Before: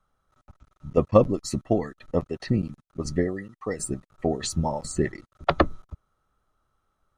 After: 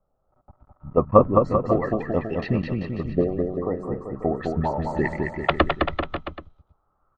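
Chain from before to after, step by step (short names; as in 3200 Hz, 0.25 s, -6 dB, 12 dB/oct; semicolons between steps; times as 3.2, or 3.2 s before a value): LFO low-pass saw up 0.33 Hz 600–4100 Hz; bouncing-ball echo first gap 0.21 s, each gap 0.85×, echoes 5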